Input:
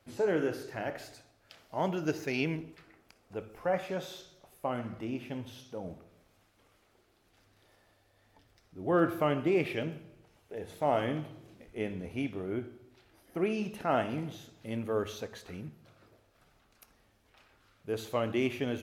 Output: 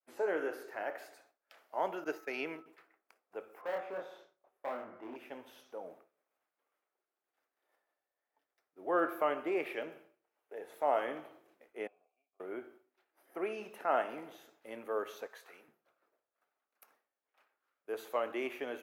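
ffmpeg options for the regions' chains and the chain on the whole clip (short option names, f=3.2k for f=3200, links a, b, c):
-filter_complex "[0:a]asettb=1/sr,asplit=3[a][b][c];[a]atrim=end=2.044[d];[b]atrim=start=2.04:end=2.66,asetpts=PTS-STARTPTS,afade=t=in:d=0.004:c=qsin,afade=t=out:st=0.616:d=0.004:c=qsin,agate=range=-33dB:threshold=-36dB:ratio=3:release=100:detection=peak,aeval=exprs='val(0)+0.00126*sin(2*PI*1300*n/s)':c=same[e];[c]atrim=start=2.656[f];[d][e]acrossfade=d=0.004:c1=hsin:c2=qsin[g];[g][f]acrossfade=d=0.004:c1=qsin:c2=hsin,asettb=1/sr,asplit=3[h][i][j];[h]atrim=end=3.614[k];[i]atrim=start=3.61:end=5.16,asetpts=PTS-STARTPTS,afade=t=in:d=0.004:c=qsin,afade=t=out:st=1.546:d=0.004:c=qsin,lowpass=f=1.2k:p=1,asoftclip=type=hard:threshold=-33.5dB,asplit=2[l][m];[m]adelay=28,volume=-2.5dB[n];[l][n]amix=inputs=2:normalize=0,atrim=end_sample=68355[o];[j]atrim=start=5.156[p];[k][o]acrossfade=d=0.004:c1=hsin:c2=qsin[q];[q][p]acrossfade=d=0.004:c1=qsin:c2=hsin,asettb=1/sr,asplit=3[r][s][t];[r]atrim=end=11.874[u];[s]atrim=start=11.87:end=12.4,asetpts=PTS-STARTPTS,afade=t=in:d=0.004:c=qsin,afade=t=out:st=0.526:d=0.004:c=qsin,acompressor=threshold=-42dB:ratio=8:attack=3.2:release=140:knee=1:detection=peak,asplit=3[v][w][x];[v]bandpass=f=730:t=q:w=8,volume=0dB[y];[w]bandpass=f=1.09k:t=q:w=8,volume=-6dB[z];[x]bandpass=f=2.44k:t=q:w=8,volume=-9dB[aa];[y][z][aa]amix=inputs=3:normalize=0,asplit=2[ab][ac];[ac]adelay=12,volume=-7dB[ad];[ab][ad]amix=inputs=2:normalize=0,atrim=end_sample=23373[ae];[t]atrim=start=12.396[af];[u][ae]acrossfade=d=0.004:c1=hsin:c2=qsin[ag];[ag][af]acrossfade=d=0.004:c1=qsin:c2=hsin,asettb=1/sr,asplit=3[ah][ai][aj];[ah]atrim=end=15.274[ak];[ai]atrim=start=15.27:end=15.68,asetpts=PTS-STARTPTS,afade=t=in:d=0.004:c=qsin,afade=t=out:st=0.406:d=0.004:c=qsin,highpass=f=910:p=1,asplit=2[al][am];[am]adelay=23,volume=-11dB[an];[al][an]amix=inputs=2:normalize=0,atrim=end_sample=18081[ao];[aj]atrim=start=15.676[ap];[ak][ao]acrossfade=d=0.004:c1=hsin:c2=qsin[aq];[aq][ap]acrossfade=d=0.004:c1=qsin:c2=hsin,aemphasis=mode=production:type=riaa,agate=range=-33dB:threshold=-51dB:ratio=3:detection=peak,acrossover=split=290 2000:gain=0.0891 1 0.0891[ar][as][at];[ar][as][at]amix=inputs=3:normalize=0"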